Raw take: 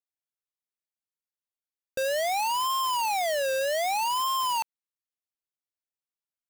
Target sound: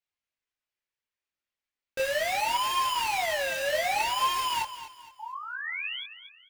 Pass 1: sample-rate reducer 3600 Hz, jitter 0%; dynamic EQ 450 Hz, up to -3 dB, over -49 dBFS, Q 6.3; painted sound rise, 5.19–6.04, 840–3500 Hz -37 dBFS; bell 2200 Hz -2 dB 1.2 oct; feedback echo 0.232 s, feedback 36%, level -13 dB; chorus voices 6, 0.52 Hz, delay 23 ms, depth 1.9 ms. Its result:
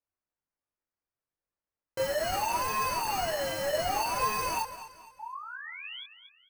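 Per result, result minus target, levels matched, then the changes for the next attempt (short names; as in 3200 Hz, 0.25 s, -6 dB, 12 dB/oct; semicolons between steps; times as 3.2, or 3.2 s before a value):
sample-rate reducer: distortion +7 dB; 2000 Hz band -3.0 dB
change: sample-rate reducer 12000 Hz, jitter 0%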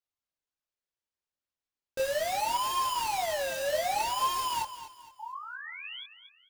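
2000 Hz band -4.5 dB
change: bell 2200 Hz +7 dB 1.2 oct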